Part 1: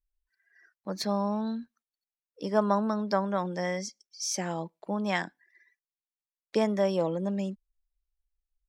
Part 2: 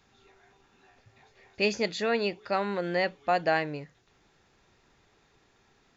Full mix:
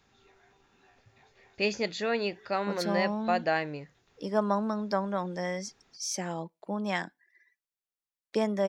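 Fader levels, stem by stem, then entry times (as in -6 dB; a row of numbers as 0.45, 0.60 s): -2.0, -2.0 dB; 1.80, 0.00 s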